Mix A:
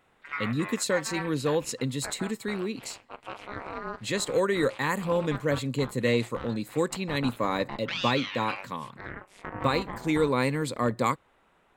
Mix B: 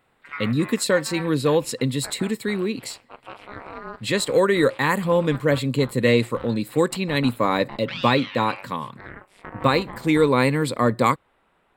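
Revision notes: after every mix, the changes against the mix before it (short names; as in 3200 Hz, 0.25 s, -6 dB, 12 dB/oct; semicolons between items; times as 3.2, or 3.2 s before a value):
speech +7.0 dB; master: add bell 6400 Hz -9.5 dB 0.31 oct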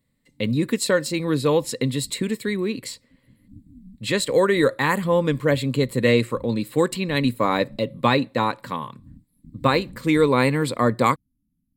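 background: add brick-wall FIR band-stop 300–10000 Hz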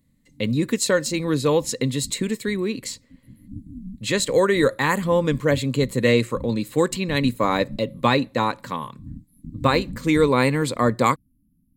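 background +9.0 dB; master: add bell 6400 Hz +9.5 dB 0.31 oct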